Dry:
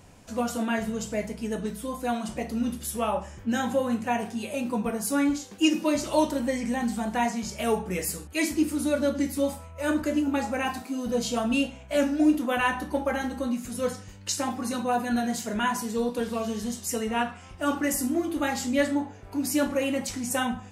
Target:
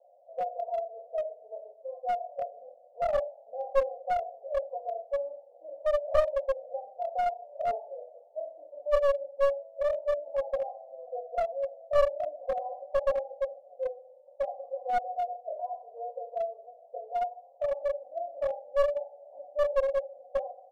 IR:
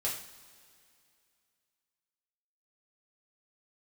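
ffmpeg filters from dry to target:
-filter_complex "[0:a]asuperpass=centerf=620:order=8:qfactor=2.8,asplit=2[s0][s1];[s1]adelay=43,volume=0.224[s2];[s0][s2]amix=inputs=2:normalize=0,asplit=2[s3][s4];[1:a]atrim=start_sample=2205[s5];[s4][s5]afir=irnorm=-1:irlink=0,volume=0.398[s6];[s3][s6]amix=inputs=2:normalize=0,aeval=exprs='clip(val(0),-1,0.0531)':c=same"

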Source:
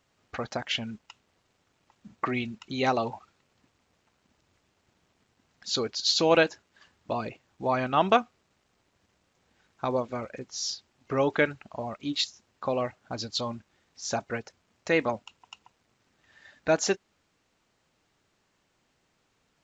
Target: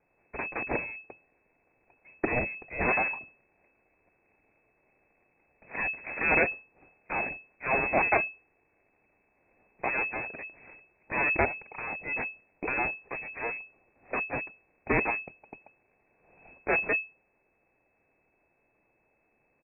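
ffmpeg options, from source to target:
-af "bandreject=f=1500:w=23,aecho=1:1:2.7:0.4,aresample=8000,aeval=exprs='abs(val(0))':c=same,aresample=44100,aexciter=amount=6.7:drive=8.4:freq=2000,aeval=exprs='clip(val(0),-1,0.237)':c=same,lowpass=f=2200:t=q:w=0.5098,lowpass=f=2200:t=q:w=0.6013,lowpass=f=2200:t=q:w=0.9,lowpass=f=2200:t=q:w=2.563,afreqshift=-2600,volume=0.75"

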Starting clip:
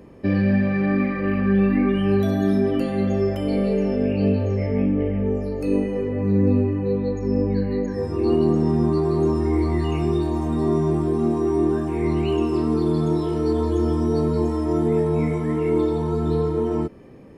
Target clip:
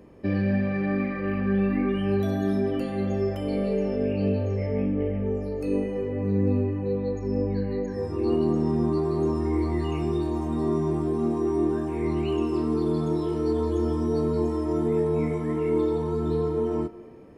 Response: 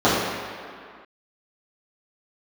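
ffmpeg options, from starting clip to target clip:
-filter_complex "[0:a]asplit=2[s0][s1];[1:a]atrim=start_sample=2205[s2];[s1][s2]afir=irnorm=-1:irlink=0,volume=0.0141[s3];[s0][s3]amix=inputs=2:normalize=0,volume=0.562"

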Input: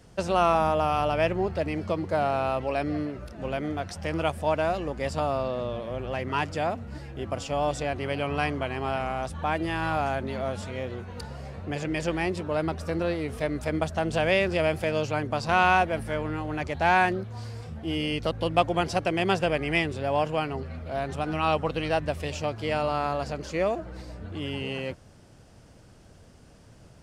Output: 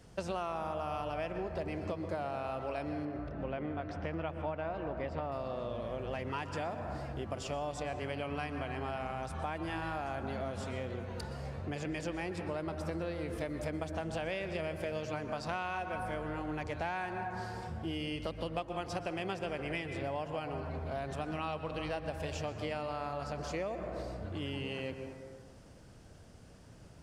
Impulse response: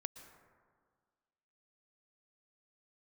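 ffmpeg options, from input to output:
-filter_complex "[0:a]asettb=1/sr,asplit=3[s0][s1][s2];[s0]atrim=end=3.054[s3];[s1]atrim=start=3.05:end=5.32,asetpts=PTS-STARTPTS,afade=t=in:d=0.004:c=qsin,afade=t=out:st=2.266:d=0.004:c=qsin,lowpass=2500[s4];[s2]atrim=start=5.316[s5];[s3][s4]acrossfade=d=0.004:c1=hsin:c2=qsin[s6];[s6][s5]acrossfade=d=0.004:c1=qsin:c2=hsin[s7];[1:a]atrim=start_sample=2205[s8];[s7][s8]afir=irnorm=-1:irlink=0,acompressor=threshold=0.02:ratio=6"

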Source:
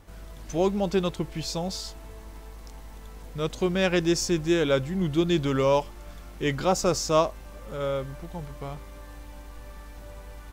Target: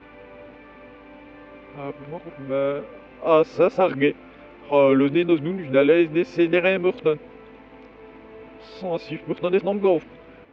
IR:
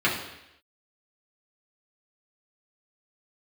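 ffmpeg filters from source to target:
-af "areverse,highpass=150,equalizer=f=180:t=q:w=4:g=-6,equalizer=f=260:t=q:w=4:g=10,equalizer=f=470:t=q:w=4:g=9,equalizer=f=2400:t=q:w=4:g=8,lowpass=f=3000:w=0.5412,lowpass=f=3000:w=1.3066,volume=1.26"

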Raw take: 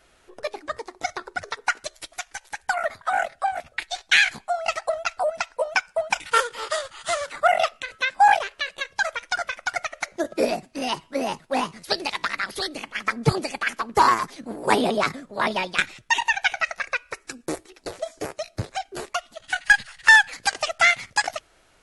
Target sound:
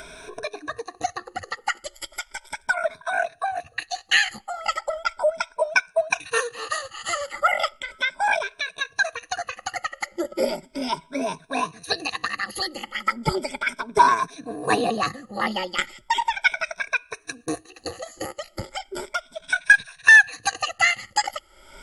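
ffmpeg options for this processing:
-af "afftfilt=real='re*pow(10,18/40*sin(2*PI*(1.6*log(max(b,1)*sr/1024/100)/log(2)-(0.36)*(pts-256)/sr)))':imag='im*pow(10,18/40*sin(2*PI*(1.6*log(max(b,1)*sr/1024/100)/log(2)-(0.36)*(pts-256)/sr)))':win_size=1024:overlap=0.75,acompressor=mode=upward:threshold=0.0708:ratio=2.5,volume=0.631"

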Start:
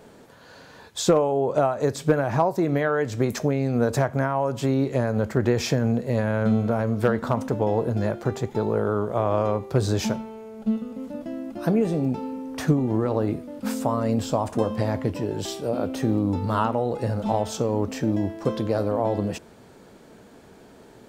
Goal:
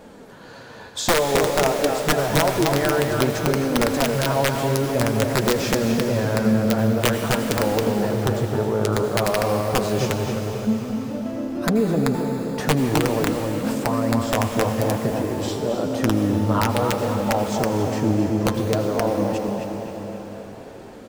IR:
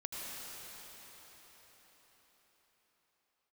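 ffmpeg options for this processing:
-filter_complex "[0:a]highshelf=f=3700:g=-5.5,asplit=2[s0][s1];[s1]adelay=263,lowpass=f=3200:p=1,volume=0.596,asplit=2[s2][s3];[s3]adelay=263,lowpass=f=3200:p=1,volume=0.48,asplit=2[s4][s5];[s5]adelay=263,lowpass=f=3200:p=1,volume=0.48,asplit=2[s6][s7];[s7]adelay=263,lowpass=f=3200:p=1,volume=0.48,asplit=2[s8][s9];[s9]adelay=263,lowpass=f=3200:p=1,volume=0.48,asplit=2[s10][s11];[s11]adelay=263,lowpass=f=3200:p=1,volume=0.48[s12];[s0][s2][s4][s6][s8][s10][s12]amix=inputs=7:normalize=0,asplit=2[s13][s14];[s14]acompressor=threshold=0.0224:ratio=5,volume=1.19[s15];[s13][s15]amix=inputs=2:normalize=0,aeval=exprs='(mod(2.82*val(0)+1,2)-1)/2.82':c=same,flanger=delay=3.6:depth=5.9:regen=-39:speed=0.52:shape=sinusoidal,asplit=2[s16][s17];[1:a]atrim=start_sample=2205,highshelf=f=3600:g=7.5[s18];[s17][s18]afir=irnorm=-1:irlink=0,volume=0.531[s19];[s16][s19]amix=inputs=2:normalize=0"

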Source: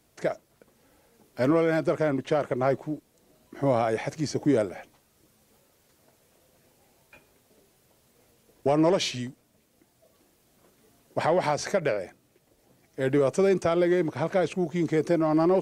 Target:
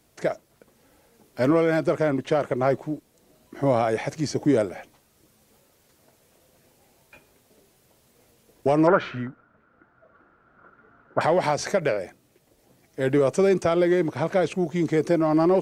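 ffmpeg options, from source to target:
-filter_complex "[0:a]asettb=1/sr,asplit=3[s0][s1][s2];[s0]atrim=end=8.874[s3];[s1]atrim=start=8.87:end=11.21,asetpts=PTS-STARTPTS,afade=t=in:d=0.004:c=qsin,afade=t=out:st=2.336:d=0.004:c=qsin,lowpass=f=1400:t=q:w=13[s4];[s2]atrim=start=11.206[s5];[s3][s4]acrossfade=d=0.004:c1=hsin:c2=qsin[s6];[s6][s5]acrossfade=d=0.004:c1=qsin:c2=hsin,volume=1.33"

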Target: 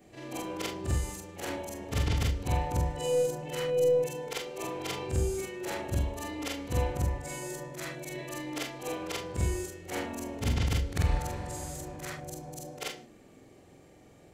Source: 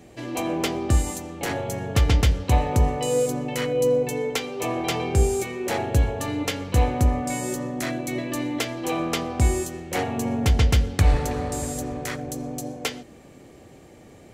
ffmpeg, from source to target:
-af "afftfilt=real='re':imag='-im':win_size=4096:overlap=0.75,aeval=exprs='0.299*(cos(1*acos(clip(val(0)/0.299,-1,1)))-cos(1*PI/2))+0.0075*(cos(4*acos(clip(val(0)/0.299,-1,1)))-cos(4*PI/2))':c=same,bandreject=f=60:t=h:w=6,bandreject=f=120:t=h:w=6,bandreject=f=180:t=h:w=6,bandreject=f=240:t=h:w=6,volume=0.668"

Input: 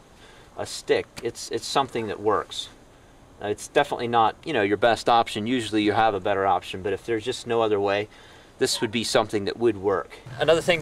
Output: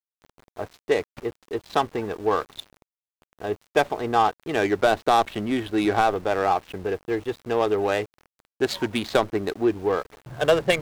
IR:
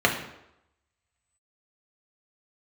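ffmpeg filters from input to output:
-af "adynamicsmooth=sensitivity=2.5:basefreq=910,aeval=exprs='val(0)*gte(abs(val(0)),0.00708)':c=same"

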